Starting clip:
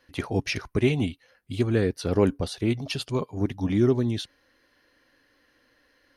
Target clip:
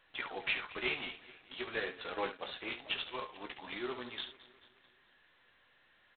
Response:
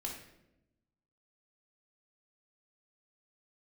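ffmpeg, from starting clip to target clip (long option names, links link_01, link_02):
-filter_complex "[0:a]asplit=2[link_01][link_02];[link_02]aecho=0:1:16|70:0.473|0.299[link_03];[link_01][link_03]amix=inputs=2:normalize=0,flanger=delay=6.1:depth=8.1:regen=62:speed=0.45:shape=sinusoidal,highpass=980,asplit=2[link_04][link_05];[link_05]aecho=0:1:217|434|651|868|1085:0.112|0.0651|0.0377|0.0219|0.0127[link_06];[link_04][link_06]amix=inputs=2:normalize=0,volume=1dB" -ar 8000 -c:a adpcm_g726 -b:a 16k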